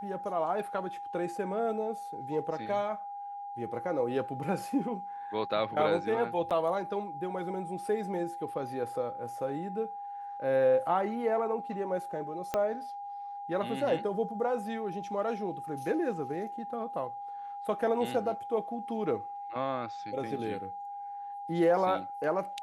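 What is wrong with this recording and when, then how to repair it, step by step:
whine 810 Hz -38 dBFS
6.50–6.51 s: dropout 7.3 ms
12.54 s: pop -16 dBFS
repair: de-click; band-stop 810 Hz, Q 30; interpolate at 6.50 s, 7.3 ms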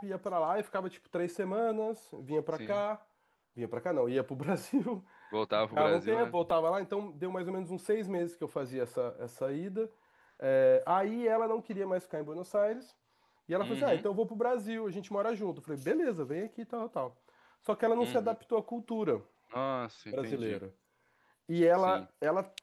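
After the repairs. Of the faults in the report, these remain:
12.54 s: pop

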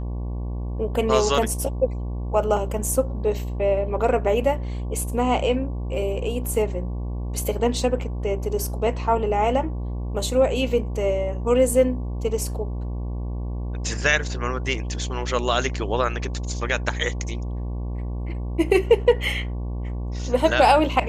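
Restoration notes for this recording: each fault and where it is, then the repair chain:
buzz 60 Hz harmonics 19 -28 dBFS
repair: de-hum 60 Hz, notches 19

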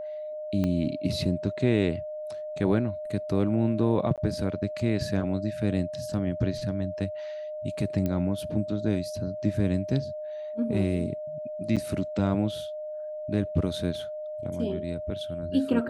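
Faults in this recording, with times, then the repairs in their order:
whine 610 Hz -33 dBFS
0.64 s: pop -17 dBFS
4.16–4.18 s: dropout 17 ms
8.06 s: pop -17 dBFS
11.76–11.77 s: dropout 7 ms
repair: de-click; band-stop 610 Hz, Q 30; interpolate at 4.16 s, 17 ms; interpolate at 11.76 s, 7 ms

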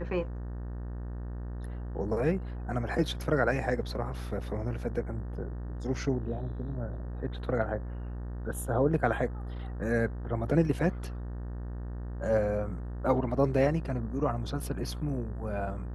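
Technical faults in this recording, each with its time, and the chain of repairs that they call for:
buzz 60 Hz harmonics 31 -37 dBFS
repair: de-hum 60 Hz, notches 31

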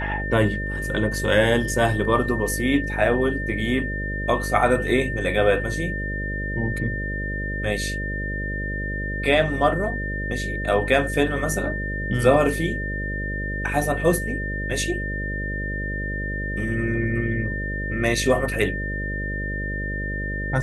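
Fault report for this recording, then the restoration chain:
buzz 50 Hz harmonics 12 -29 dBFS
whine 1.8 kHz -29 dBFS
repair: band-stop 1.8 kHz, Q 30; de-hum 50 Hz, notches 12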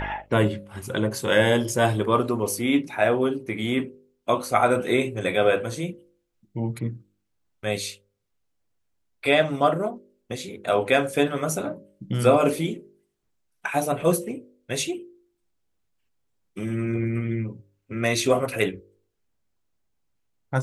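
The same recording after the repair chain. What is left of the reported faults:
nothing left

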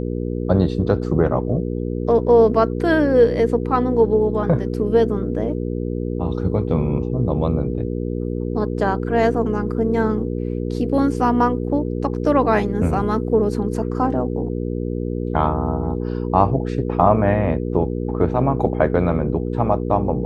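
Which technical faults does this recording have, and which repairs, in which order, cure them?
hum 60 Hz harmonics 8 -24 dBFS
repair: de-hum 60 Hz, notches 8

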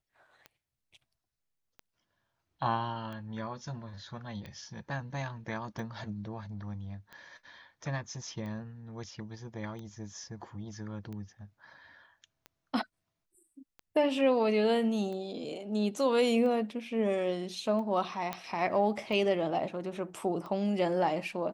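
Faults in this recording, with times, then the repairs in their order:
tick 45 rpm -31 dBFS
18.33 s: pop -19 dBFS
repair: de-click

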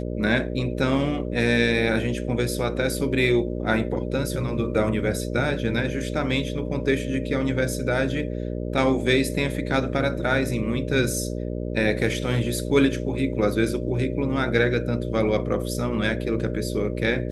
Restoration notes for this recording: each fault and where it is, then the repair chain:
buzz 60 Hz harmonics 10 -29 dBFS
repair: de-hum 60 Hz, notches 10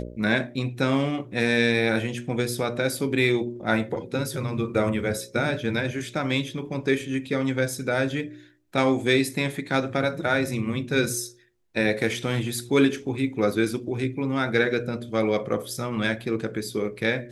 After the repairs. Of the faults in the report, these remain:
nothing left

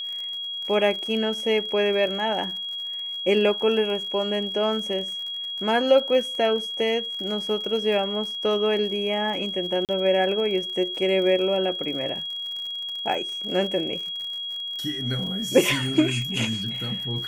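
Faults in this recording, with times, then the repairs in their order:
crackle 56 per s -33 dBFS
whine 3.3 kHz -29 dBFS
9.85–9.89 s: dropout 38 ms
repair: de-click; band-stop 3.3 kHz, Q 30; interpolate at 9.85 s, 38 ms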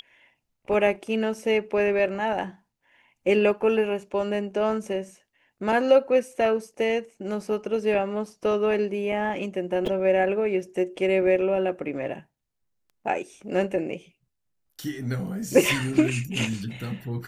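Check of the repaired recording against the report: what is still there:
nothing left

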